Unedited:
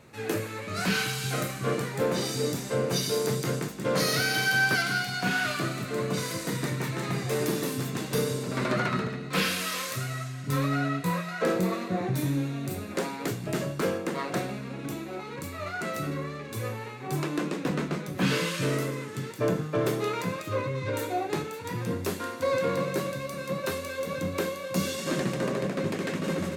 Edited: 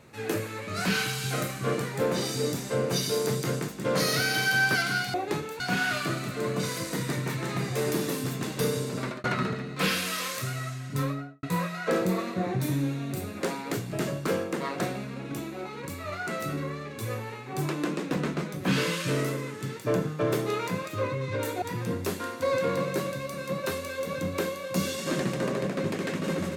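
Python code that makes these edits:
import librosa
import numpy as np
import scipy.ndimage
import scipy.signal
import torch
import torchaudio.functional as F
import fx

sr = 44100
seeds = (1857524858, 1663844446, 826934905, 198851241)

y = fx.studio_fade_out(x, sr, start_s=10.44, length_s=0.53)
y = fx.edit(y, sr, fx.fade_out_span(start_s=8.51, length_s=0.27),
    fx.move(start_s=21.16, length_s=0.46, to_s=5.14), tone=tone)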